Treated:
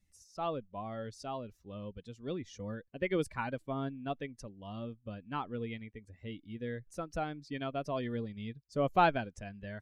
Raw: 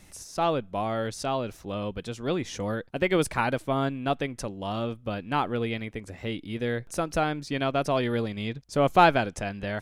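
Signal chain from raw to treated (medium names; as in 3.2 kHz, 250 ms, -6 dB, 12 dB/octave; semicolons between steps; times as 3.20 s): expander on every frequency bin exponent 1.5; low-pass 3.8 kHz 6 dB/octave; trim -6.5 dB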